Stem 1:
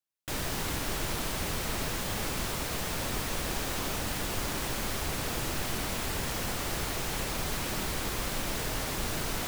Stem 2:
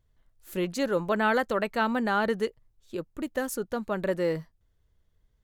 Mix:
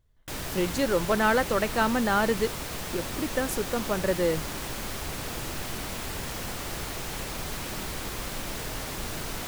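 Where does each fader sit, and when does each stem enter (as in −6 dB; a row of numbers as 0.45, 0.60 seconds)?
−1.5, +1.5 decibels; 0.00, 0.00 seconds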